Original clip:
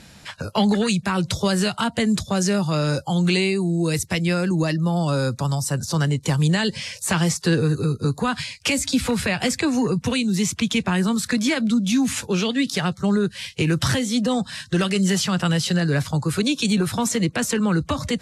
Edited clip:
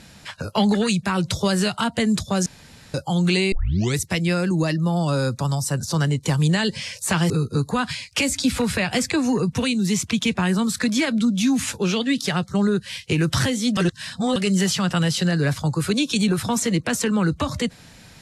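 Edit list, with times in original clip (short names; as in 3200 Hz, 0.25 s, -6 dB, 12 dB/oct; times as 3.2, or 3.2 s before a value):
2.46–2.94 room tone
3.52 tape start 0.46 s
7.3–7.79 cut
14.26–14.85 reverse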